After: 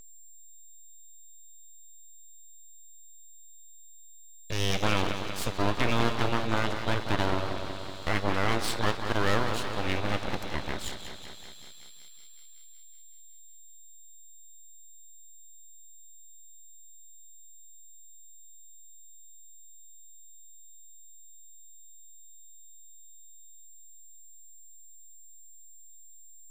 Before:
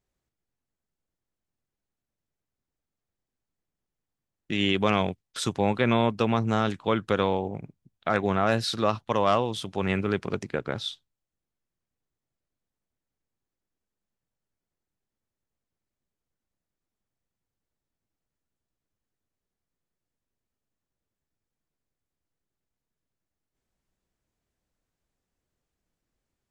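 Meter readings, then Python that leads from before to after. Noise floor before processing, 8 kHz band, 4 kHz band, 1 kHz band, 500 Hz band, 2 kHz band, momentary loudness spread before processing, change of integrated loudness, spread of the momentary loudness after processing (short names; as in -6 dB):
under -85 dBFS, +5.0 dB, -1.0 dB, -3.0 dB, -6.0 dB, +0.5 dB, 9 LU, -3.5 dB, 16 LU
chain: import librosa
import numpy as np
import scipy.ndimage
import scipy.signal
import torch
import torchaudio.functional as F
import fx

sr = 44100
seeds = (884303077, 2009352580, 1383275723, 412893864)

y = fx.echo_bbd(x, sr, ms=187, stages=4096, feedback_pct=70, wet_db=-8.0)
y = y + 10.0 ** (-43.0 / 20.0) * np.sin(2.0 * np.pi * 3700.0 * np.arange(len(y)) / sr)
y = fx.comb_fb(y, sr, f0_hz=810.0, decay_s=0.3, harmonics='all', damping=0.0, mix_pct=70)
y = np.abs(y)
y = y * 10.0 ** (8.5 / 20.0)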